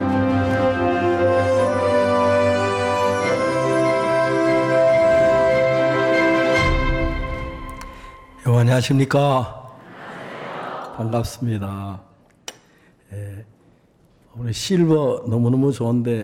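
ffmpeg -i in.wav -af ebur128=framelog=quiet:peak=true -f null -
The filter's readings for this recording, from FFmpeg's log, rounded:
Integrated loudness:
  I:         -18.6 LUFS
  Threshold: -29.9 LUFS
Loudness range:
  LRA:        12.0 LU
  Threshold: -40.1 LUFS
  LRA low:   -29.0 LUFS
  LRA high:  -17.0 LUFS
True peak:
  Peak:       -7.7 dBFS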